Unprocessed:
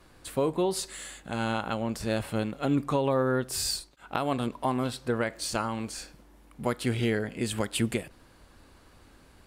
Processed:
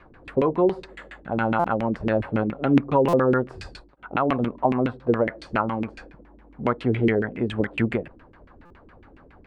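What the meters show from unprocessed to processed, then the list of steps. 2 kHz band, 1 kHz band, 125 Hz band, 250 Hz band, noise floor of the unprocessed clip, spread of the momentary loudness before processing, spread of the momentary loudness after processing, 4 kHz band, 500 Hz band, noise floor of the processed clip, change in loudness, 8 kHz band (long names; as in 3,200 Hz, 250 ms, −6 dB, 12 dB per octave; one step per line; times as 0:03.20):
+5.0 dB, +6.5 dB, +4.5 dB, +6.5 dB, −57 dBFS, 9 LU, 12 LU, −7.5 dB, +6.5 dB, −52 dBFS, +6.0 dB, below −20 dB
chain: auto-filter low-pass saw down 7.2 Hz 240–2,500 Hz
buffer that repeats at 0:01.59/0:03.08/0:08.65, samples 256, times 8
level +4 dB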